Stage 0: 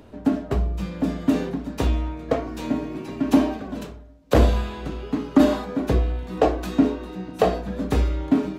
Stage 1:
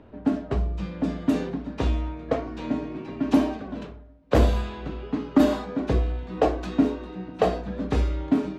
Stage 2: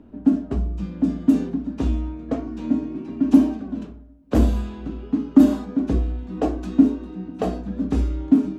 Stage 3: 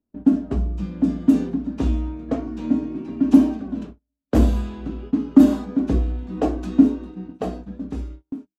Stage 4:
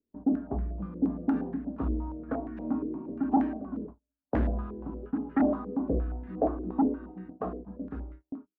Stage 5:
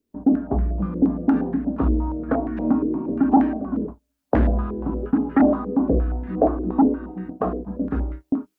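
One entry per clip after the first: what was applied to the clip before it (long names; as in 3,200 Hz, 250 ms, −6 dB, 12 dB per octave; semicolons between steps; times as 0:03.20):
low-pass that shuts in the quiet parts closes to 2,500 Hz, open at −13.5 dBFS; level −2.5 dB
octave-band graphic EQ 125/250/500/1,000/2,000/4,000 Hz −7/+8/−8/−5/−8/−7 dB; level +2.5 dB
fade-out on the ending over 1.77 s; noise gate −36 dBFS, range −35 dB; level +1 dB
soft clipping −11.5 dBFS, distortion −10 dB; low-pass on a step sequencer 8.5 Hz 440–1,800 Hz; level −9 dB
camcorder AGC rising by 6.9 dB per second; level +8.5 dB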